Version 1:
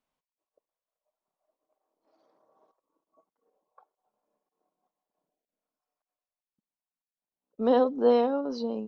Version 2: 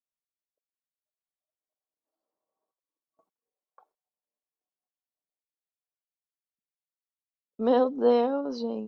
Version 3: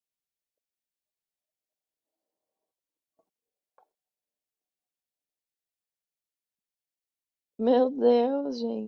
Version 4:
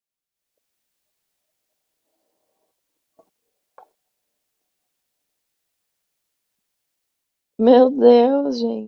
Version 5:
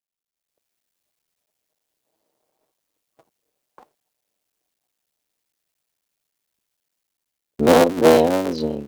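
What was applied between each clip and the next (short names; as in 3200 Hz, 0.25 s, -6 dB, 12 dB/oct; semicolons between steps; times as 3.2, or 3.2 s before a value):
gate with hold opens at -54 dBFS
bell 1200 Hz -12.5 dB 0.51 oct; gain +1 dB
AGC gain up to 16 dB
cycle switcher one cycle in 3, muted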